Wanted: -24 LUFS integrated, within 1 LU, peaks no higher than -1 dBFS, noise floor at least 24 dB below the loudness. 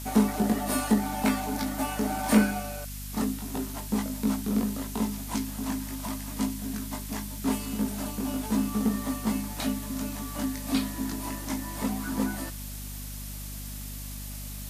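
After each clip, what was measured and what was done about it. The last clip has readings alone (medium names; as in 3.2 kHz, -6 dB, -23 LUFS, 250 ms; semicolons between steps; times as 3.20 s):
hum 50 Hz; highest harmonic 250 Hz; hum level -37 dBFS; noise floor -38 dBFS; noise floor target -54 dBFS; loudness -30.0 LUFS; peak level -9.0 dBFS; loudness target -24.0 LUFS
-> de-hum 50 Hz, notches 5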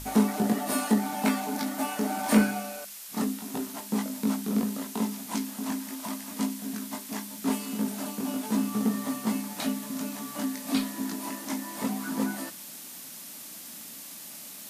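hum not found; noise floor -43 dBFS; noise floor target -55 dBFS
-> noise print and reduce 12 dB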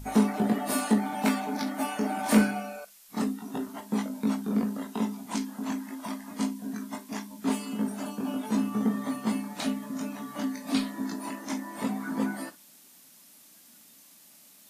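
noise floor -55 dBFS; loudness -30.5 LUFS; peak level -9.0 dBFS; loudness target -24.0 LUFS
-> trim +6.5 dB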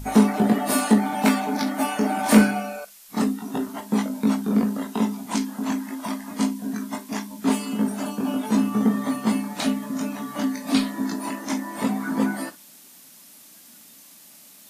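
loudness -24.0 LUFS; peak level -2.5 dBFS; noise floor -49 dBFS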